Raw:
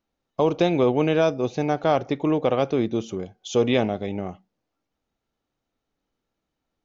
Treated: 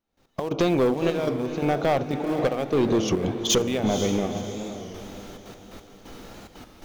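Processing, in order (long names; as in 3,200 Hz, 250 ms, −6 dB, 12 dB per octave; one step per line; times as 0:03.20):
camcorder AGC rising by 48 dB per second
on a send at −21 dB: low-pass filter 1,100 Hz 24 dB per octave + convolution reverb RT60 1.1 s, pre-delay 3 ms
on the sum: downward compressor 1.5 to 1, threshold −33 dBFS, peak gain reduction 7.5 dB
in parallel at −9 dB: centre clipping without the shift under −23 dBFS
on the sum: gate pattern "..x...xxxxx.x" 176 BPM −12 dB
soft clipping −23 dBFS, distortion −9 dB
0:02.29–0:04.00: leveller curve on the samples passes 1
feedback delay with all-pass diffusion 500 ms, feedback 42%, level −9 dB
wow of a warped record 33 1/3 rpm, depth 100 cents
level +7.5 dB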